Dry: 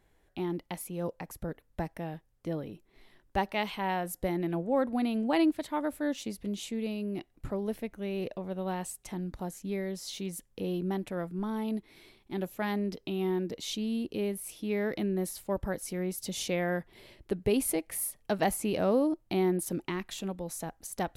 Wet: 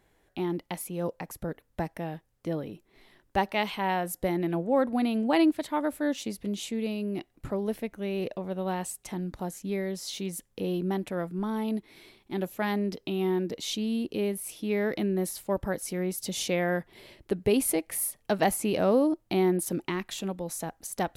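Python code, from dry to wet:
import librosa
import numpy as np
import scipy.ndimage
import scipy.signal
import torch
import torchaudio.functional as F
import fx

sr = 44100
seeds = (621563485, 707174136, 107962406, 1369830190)

y = fx.low_shelf(x, sr, hz=73.0, db=-8.0)
y = F.gain(torch.from_numpy(y), 3.5).numpy()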